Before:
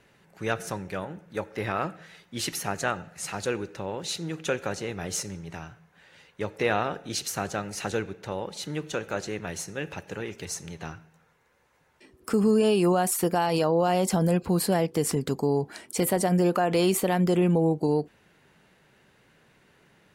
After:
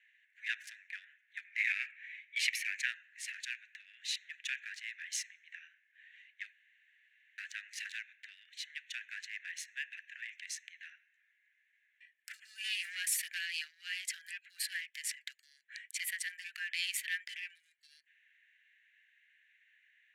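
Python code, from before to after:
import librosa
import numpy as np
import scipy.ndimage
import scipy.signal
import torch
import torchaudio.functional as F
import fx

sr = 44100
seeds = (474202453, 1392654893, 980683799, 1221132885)

y = fx.peak_eq(x, sr, hz=2300.0, db=14.0, octaves=0.27, at=(1.44, 2.86))
y = fx.leveller(y, sr, passes=1, at=(12.64, 13.41))
y = fx.edit(y, sr, fx.room_tone_fill(start_s=6.52, length_s=0.86), tone=tone)
y = fx.wiener(y, sr, points=9)
y = scipy.signal.sosfilt(scipy.signal.butter(16, 1700.0, 'highpass', fs=sr, output='sos'), y)
y = fx.tilt_eq(y, sr, slope=-4.5)
y = F.gain(torch.from_numpy(y), 6.5).numpy()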